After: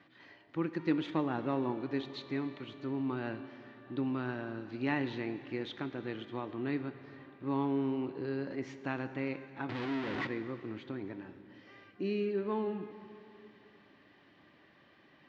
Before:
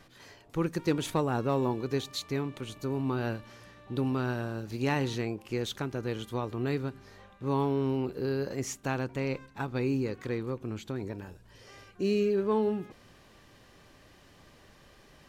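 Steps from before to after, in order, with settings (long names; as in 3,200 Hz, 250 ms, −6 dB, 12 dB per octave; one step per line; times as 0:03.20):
0:09.69–0:10.27: sign of each sample alone
loudspeaker in its box 150–3,800 Hz, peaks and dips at 300 Hz +7 dB, 460 Hz −5 dB, 1,900 Hz +5 dB
dense smooth reverb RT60 2.9 s, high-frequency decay 0.85×, pre-delay 0 ms, DRR 10.5 dB
level −5.5 dB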